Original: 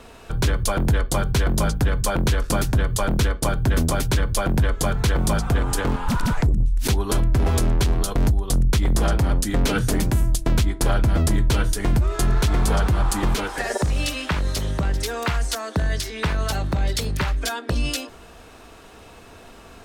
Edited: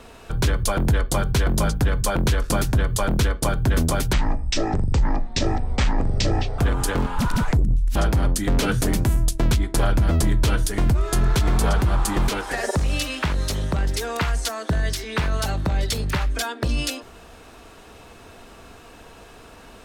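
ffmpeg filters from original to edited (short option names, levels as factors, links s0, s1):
-filter_complex "[0:a]asplit=4[s0][s1][s2][s3];[s0]atrim=end=4.134[s4];[s1]atrim=start=4.13:end=5.48,asetpts=PTS-STARTPTS,asetrate=24255,aresample=44100,atrim=end_sample=108245,asetpts=PTS-STARTPTS[s5];[s2]atrim=start=5.476:end=6.852[s6];[s3]atrim=start=9.018[s7];[s4][s5]acrossfade=d=0.004:c1=hsin:c2=hsin[s8];[s8][s6]acrossfade=d=0.004:c1=hsin:c2=hsin[s9];[s9][s7]acrossfade=d=0.004:c1=hsin:c2=hsin"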